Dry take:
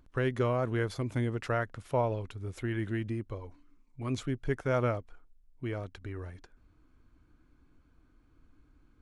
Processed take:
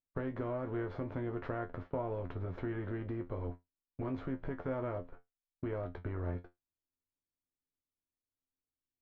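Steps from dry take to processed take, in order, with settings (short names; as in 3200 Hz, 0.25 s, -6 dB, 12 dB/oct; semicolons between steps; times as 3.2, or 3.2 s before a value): per-bin compression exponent 0.6; gate -38 dBFS, range -56 dB; high shelf 2300 Hz -12 dB; compressor 3:1, threshold -40 dBFS, peak gain reduction 12.5 dB; air absorption 270 m; resonator 88 Hz, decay 0.17 s, harmonics all, mix 90%; gain +9 dB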